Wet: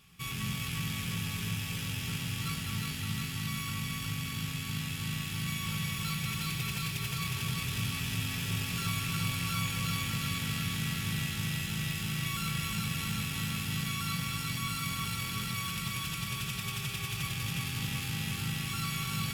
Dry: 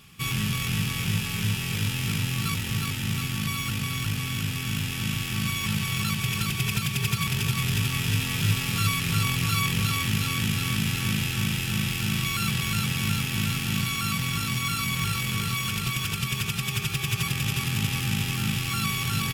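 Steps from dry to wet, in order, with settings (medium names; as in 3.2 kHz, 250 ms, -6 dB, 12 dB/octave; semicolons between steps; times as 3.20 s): peaking EQ 350 Hz -3 dB 1.2 oct; feedback comb 59 Hz, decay 0.57 s, harmonics odd, mix 70%; overload inside the chain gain 29 dB; on a send: echo whose repeats swap between lows and highs 104 ms, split 880 Hz, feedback 83%, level -4.5 dB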